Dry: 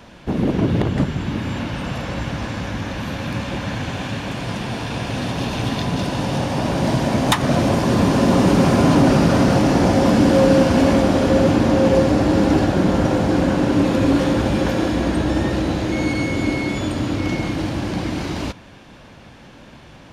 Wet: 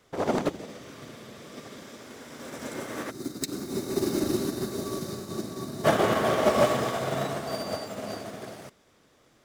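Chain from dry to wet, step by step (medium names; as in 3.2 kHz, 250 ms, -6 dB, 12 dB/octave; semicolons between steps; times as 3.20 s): wide varispeed 2.13×; time-frequency box 3.10–5.84 s, 420–3600 Hz -15 dB; upward expansion 2.5:1, over -25 dBFS; trim -2 dB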